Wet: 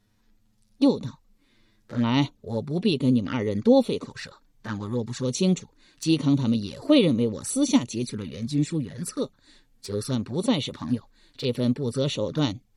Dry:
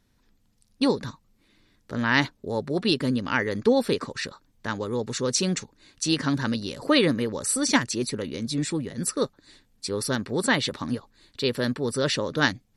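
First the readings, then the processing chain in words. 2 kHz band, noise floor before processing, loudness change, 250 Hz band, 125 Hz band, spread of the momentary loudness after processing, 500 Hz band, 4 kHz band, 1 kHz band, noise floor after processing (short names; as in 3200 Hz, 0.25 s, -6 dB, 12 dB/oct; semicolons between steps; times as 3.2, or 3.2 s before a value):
-12.0 dB, -66 dBFS, +0.5 dB, +3.0 dB, +4.0 dB, 13 LU, 0.0 dB, -4.0 dB, -5.0 dB, -65 dBFS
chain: envelope flanger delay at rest 9.7 ms, full sweep at -22.5 dBFS; harmonic-percussive split harmonic +9 dB; gain -4 dB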